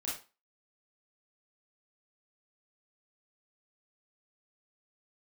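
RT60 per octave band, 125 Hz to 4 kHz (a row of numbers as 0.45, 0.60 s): 0.30, 0.30, 0.30, 0.35, 0.30, 0.30 s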